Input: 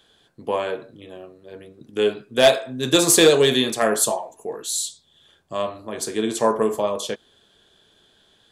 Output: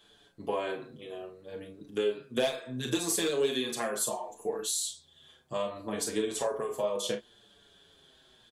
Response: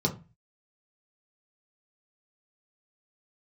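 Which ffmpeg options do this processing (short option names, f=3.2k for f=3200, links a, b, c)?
-filter_complex "[0:a]acompressor=threshold=-26dB:ratio=5,aecho=1:1:34|48:0.398|0.251,asplit=2[a][b];[b]adelay=6.4,afreqshift=-0.68[c];[a][c]amix=inputs=2:normalize=1"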